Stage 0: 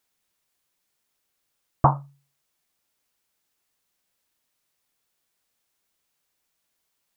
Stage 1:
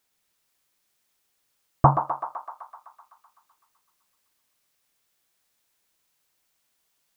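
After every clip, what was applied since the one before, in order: thinning echo 127 ms, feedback 78%, high-pass 570 Hz, level -6 dB; trim +1.5 dB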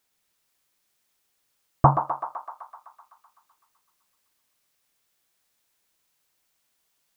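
no audible change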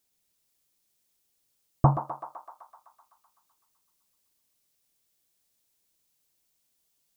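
peaking EQ 1.4 kHz -10 dB 2.4 oct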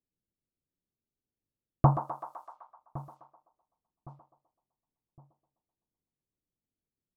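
feedback delay 1112 ms, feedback 38%, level -18.5 dB; level-controlled noise filter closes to 310 Hz, open at -39 dBFS; trim -1.5 dB

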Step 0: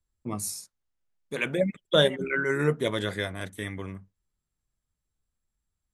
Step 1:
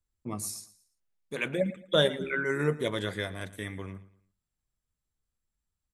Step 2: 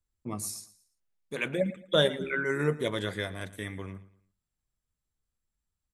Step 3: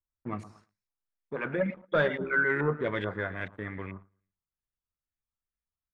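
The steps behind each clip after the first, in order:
feedback delay 113 ms, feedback 36%, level -18 dB; trim -3 dB
no audible change
waveshaping leveller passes 2; LFO low-pass saw up 2.3 Hz 990–2300 Hz; trim -7.5 dB

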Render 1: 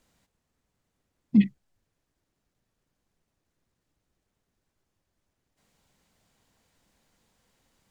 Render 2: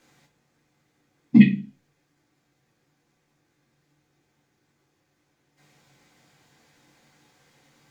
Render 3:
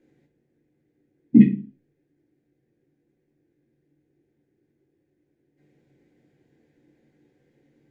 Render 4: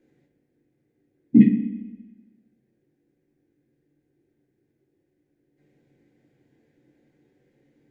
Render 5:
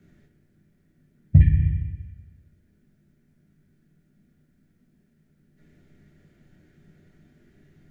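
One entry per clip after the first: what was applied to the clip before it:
reverberation RT60 0.40 s, pre-delay 3 ms, DRR -1 dB; trim +2.5 dB
FFT filter 190 Hz 0 dB, 370 Hz +8 dB, 1.2 kHz -22 dB, 1.7 kHz -8 dB, 4.8 kHz -20 dB; trim -1.5 dB
spring tank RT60 1.3 s, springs 31/38 ms, chirp 65 ms, DRR 8.5 dB; trim -1 dB
compression 6:1, threshold -18 dBFS, peak gain reduction 11 dB; frequency shift -140 Hz; trim +8 dB

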